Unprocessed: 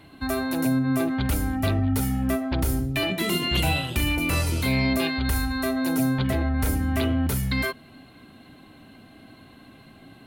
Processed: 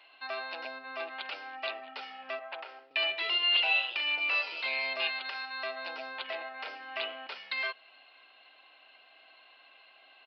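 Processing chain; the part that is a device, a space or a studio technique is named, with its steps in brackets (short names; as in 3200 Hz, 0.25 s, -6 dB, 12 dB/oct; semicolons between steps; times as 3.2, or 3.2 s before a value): 2.39–2.91 three-band isolator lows -15 dB, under 380 Hz, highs -12 dB, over 2700 Hz; musical greeting card (downsampling 11025 Hz; HPF 600 Hz 24 dB/oct; bell 2700 Hz +10.5 dB 0.38 oct); gain -6.5 dB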